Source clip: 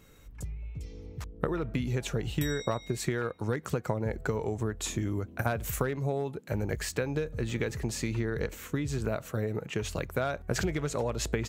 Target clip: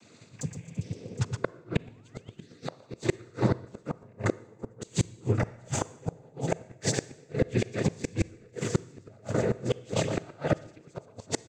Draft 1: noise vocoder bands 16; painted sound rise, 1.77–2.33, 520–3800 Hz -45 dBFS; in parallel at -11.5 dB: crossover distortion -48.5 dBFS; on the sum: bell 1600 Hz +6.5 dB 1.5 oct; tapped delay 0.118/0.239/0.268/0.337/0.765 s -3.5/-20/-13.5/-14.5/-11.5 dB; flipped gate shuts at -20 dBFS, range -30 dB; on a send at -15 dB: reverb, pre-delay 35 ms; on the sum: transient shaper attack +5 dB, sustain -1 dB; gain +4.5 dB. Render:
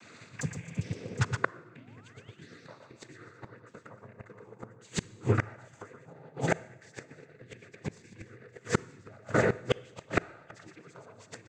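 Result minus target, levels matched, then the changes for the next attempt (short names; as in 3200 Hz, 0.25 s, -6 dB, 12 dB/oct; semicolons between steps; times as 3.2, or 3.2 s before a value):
2000 Hz band +4.0 dB
change: bell 1600 Hz -4.5 dB 1.5 oct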